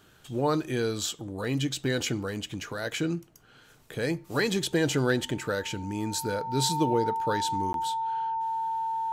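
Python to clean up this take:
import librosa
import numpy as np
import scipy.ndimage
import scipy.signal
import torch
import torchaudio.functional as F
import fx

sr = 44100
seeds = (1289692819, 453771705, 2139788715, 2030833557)

y = fx.fix_declip(x, sr, threshold_db=-14.0)
y = fx.notch(y, sr, hz=900.0, q=30.0)
y = fx.fix_interpolate(y, sr, at_s=(7.73,), length_ms=12.0)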